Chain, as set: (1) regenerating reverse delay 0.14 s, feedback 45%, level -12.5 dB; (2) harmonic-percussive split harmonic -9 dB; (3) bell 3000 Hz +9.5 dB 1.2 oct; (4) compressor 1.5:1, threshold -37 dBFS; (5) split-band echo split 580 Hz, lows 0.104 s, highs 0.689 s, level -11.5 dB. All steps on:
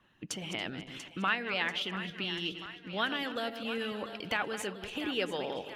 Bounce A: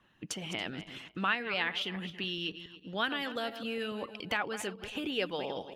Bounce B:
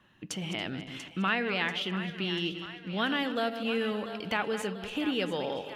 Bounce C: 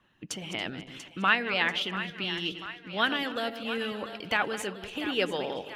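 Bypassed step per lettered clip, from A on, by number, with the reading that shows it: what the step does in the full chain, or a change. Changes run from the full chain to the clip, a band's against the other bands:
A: 5, echo-to-direct -10.0 dB to none; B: 2, 125 Hz band +4.5 dB; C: 4, mean gain reduction 2.5 dB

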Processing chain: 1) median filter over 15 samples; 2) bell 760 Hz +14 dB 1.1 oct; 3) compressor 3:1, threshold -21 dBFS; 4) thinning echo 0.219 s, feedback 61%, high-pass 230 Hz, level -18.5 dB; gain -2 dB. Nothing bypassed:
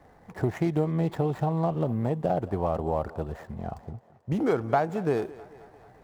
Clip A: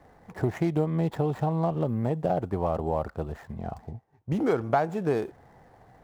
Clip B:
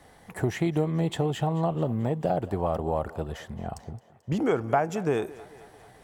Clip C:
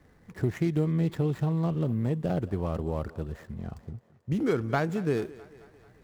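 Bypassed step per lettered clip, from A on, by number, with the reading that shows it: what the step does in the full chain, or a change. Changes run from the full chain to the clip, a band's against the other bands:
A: 4, echo-to-direct -17.0 dB to none; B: 1, 2 kHz band +2.5 dB; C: 2, 1 kHz band -8.0 dB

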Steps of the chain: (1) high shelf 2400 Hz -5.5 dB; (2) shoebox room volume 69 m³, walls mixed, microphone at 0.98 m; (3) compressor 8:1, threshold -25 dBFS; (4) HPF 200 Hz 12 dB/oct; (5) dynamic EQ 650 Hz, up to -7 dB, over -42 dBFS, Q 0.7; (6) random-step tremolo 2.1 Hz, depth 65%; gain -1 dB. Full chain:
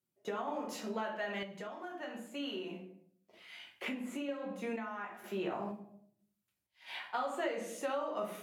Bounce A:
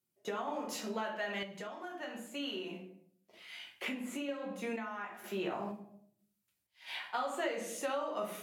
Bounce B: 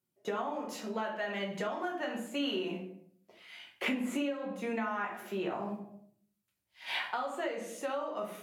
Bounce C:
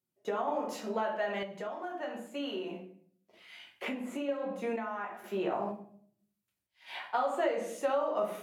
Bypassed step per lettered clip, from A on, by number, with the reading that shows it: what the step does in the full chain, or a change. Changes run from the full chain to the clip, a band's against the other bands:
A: 1, momentary loudness spread change -1 LU; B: 6, loudness change +4.0 LU; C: 5, loudness change +5.0 LU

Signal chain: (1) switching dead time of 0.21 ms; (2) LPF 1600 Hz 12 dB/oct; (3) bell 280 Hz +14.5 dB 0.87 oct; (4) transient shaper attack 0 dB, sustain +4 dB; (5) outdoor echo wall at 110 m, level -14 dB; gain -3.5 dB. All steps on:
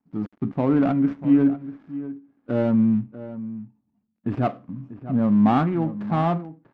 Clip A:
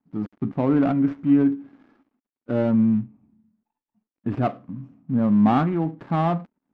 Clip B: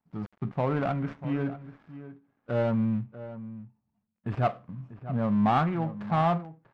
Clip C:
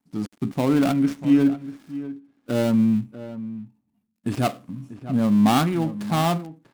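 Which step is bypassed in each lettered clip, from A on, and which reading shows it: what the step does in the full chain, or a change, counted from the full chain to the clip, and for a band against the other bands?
5, echo-to-direct -16.0 dB to none; 3, 250 Hz band -7.5 dB; 2, 2 kHz band +4.5 dB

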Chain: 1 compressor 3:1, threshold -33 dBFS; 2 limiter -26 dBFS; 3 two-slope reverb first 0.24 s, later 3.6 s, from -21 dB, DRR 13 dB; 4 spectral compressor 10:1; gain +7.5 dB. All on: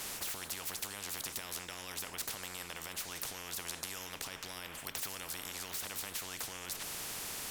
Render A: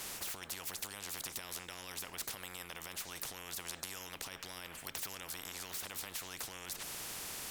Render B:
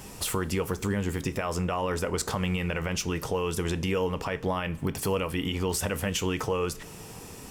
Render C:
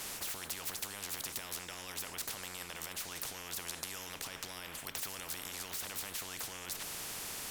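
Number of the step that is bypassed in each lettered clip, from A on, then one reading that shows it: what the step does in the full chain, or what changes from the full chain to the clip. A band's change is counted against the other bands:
3, loudness change -2.5 LU; 4, 8 kHz band -14.0 dB; 1, mean gain reduction 6.0 dB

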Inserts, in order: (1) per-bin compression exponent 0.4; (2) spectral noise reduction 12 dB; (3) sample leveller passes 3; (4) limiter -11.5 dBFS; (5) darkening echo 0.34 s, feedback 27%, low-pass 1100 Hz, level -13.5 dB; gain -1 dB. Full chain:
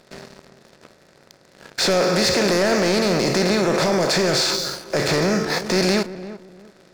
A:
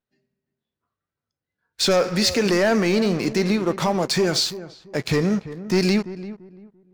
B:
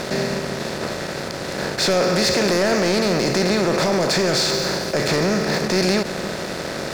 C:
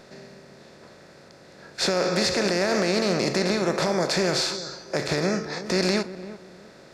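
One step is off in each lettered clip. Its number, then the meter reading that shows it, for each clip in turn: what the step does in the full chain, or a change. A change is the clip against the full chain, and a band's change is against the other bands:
1, 250 Hz band +4.0 dB; 2, momentary loudness spread change +3 LU; 3, crest factor change +4.5 dB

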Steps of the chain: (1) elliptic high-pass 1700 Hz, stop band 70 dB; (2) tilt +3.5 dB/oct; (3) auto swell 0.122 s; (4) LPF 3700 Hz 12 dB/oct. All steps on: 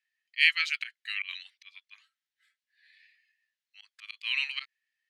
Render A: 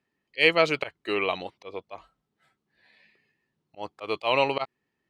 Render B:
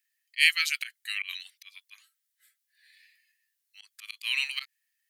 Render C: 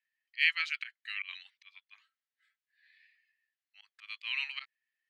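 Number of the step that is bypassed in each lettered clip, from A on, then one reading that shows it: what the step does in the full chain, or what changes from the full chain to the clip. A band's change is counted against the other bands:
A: 1, crest factor change -2.5 dB; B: 4, momentary loudness spread change +4 LU; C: 2, loudness change -5.0 LU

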